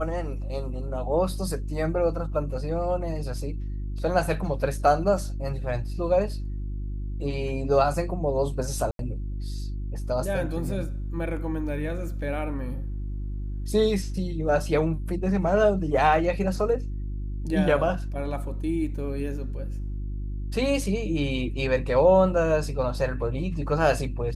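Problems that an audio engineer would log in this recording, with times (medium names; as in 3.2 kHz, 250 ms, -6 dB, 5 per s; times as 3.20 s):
hum 50 Hz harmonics 7 -31 dBFS
8.91–8.99 s: dropout 82 ms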